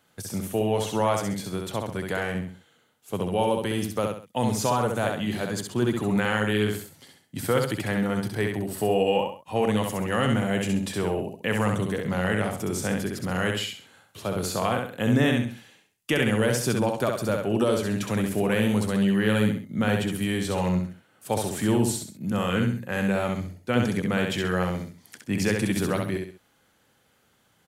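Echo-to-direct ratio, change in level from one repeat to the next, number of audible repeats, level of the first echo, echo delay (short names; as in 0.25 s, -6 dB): -3.5 dB, -9.0 dB, 3, -4.0 dB, 66 ms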